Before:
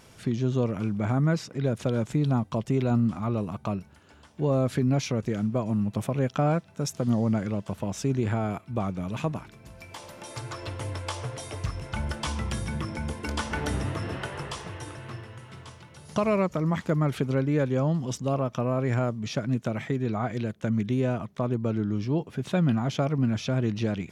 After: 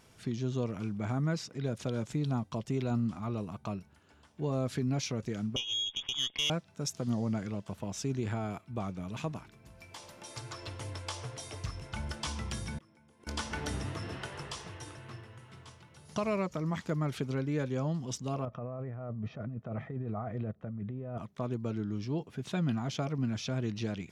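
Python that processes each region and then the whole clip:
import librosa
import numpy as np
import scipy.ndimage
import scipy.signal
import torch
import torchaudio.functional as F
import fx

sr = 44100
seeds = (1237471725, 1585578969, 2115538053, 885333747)

y = fx.chain(x, sr, fx.highpass(hz=130.0, slope=24),
    fx.freq_invert(carrier_hz=3500),
    fx.tube_stage(drive_db=18.0, bias=0.6), at=(5.56, 6.5))
y = fx.chain(y, sr, fx.highpass(hz=140.0, slope=12),
    fx.gate_flip(shuts_db=-31.0, range_db=-34),
    fx.env_flatten(amount_pct=50), at=(12.78, 13.27))
y = fx.chain(y, sr, fx.lowpass(hz=1200.0, slope=12),
    fx.comb(ms=1.6, depth=0.39),
    fx.over_compress(threshold_db=-30.0, ratio=-1.0), at=(18.45, 21.18))
y = fx.notch(y, sr, hz=550.0, q=16.0)
y = fx.dynamic_eq(y, sr, hz=5300.0, q=0.81, threshold_db=-53.0, ratio=4.0, max_db=6)
y = F.gain(torch.from_numpy(y), -7.5).numpy()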